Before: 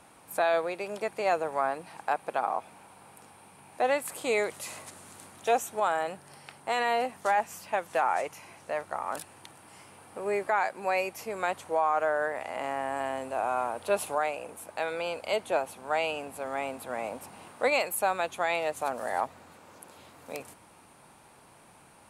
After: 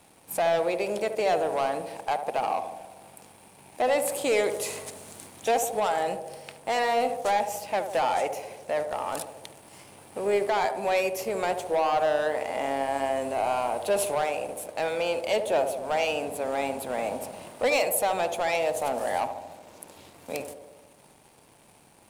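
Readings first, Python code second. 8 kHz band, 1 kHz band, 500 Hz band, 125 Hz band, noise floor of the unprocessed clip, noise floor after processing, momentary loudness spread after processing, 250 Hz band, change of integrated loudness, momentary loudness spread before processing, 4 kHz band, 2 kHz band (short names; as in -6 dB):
+6.0 dB, +2.0 dB, +4.5 dB, +5.5 dB, -56 dBFS, -56 dBFS, 14 LU, +5.0 dB, +3.0 dB, 15 LU, +4.5 dB, 0.0 dB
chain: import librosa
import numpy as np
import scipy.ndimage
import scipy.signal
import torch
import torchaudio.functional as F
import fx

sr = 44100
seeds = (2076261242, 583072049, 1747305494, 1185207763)

p1 = fx.leveller(x, sr, passes=2)
p2 = fx.peak_eq(p1, sr, hz=1300.0, db=-7.0, octaves=1.0)
p3 = p2 + fx.echo_banded(p2, sr, ms=73, feedback_pct=70, hz=520.0, wet_db=-7, dry=0)
y = p3 * 10.0 ** (-1.0 / 20.0)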